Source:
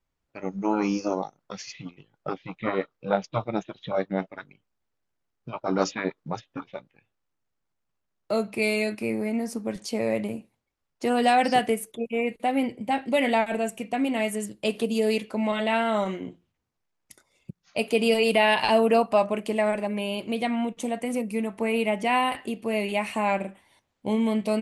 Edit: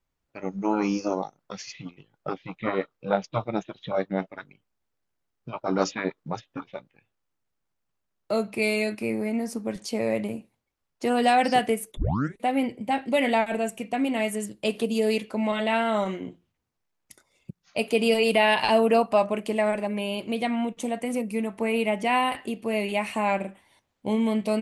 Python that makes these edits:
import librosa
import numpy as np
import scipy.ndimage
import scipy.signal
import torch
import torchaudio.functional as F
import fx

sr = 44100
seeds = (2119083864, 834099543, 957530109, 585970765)

y = fx.edit(x, sr, fx.tape_start(start_s=11.97, length_s=0.43), tone=tone)